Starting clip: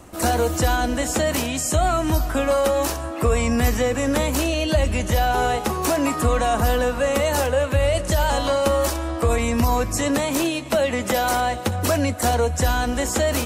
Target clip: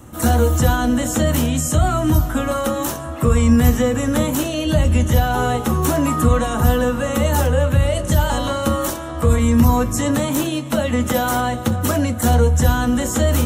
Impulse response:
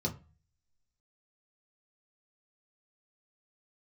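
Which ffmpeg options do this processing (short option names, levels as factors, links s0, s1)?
-filter_complex "[0:a]highshelf=f=12000:g=11.5,asplit=2[s0][s1];[1:a]atrim=start_sample=2205,atrim=end_sample=3969[s2];[s1][s2]afir=irnorm=-1:irlink=0,volume=0.398[s3];[s0][s3]amix=inputs=2:normalize=0"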